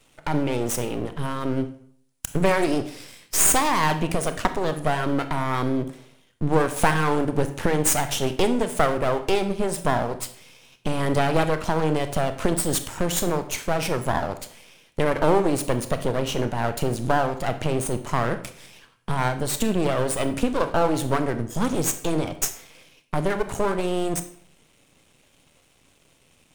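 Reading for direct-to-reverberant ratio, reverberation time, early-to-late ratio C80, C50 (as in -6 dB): 9.0 dB, 0.60 s, 15.0 dB, 12.0 dB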